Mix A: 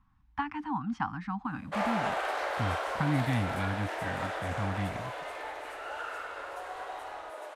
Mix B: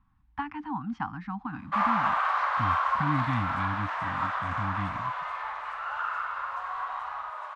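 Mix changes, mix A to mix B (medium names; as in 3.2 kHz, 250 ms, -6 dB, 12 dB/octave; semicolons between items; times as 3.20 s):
background: add resonant high-pass 1.1 kHz, resonance Q 5.9; master: add distance through air 120 m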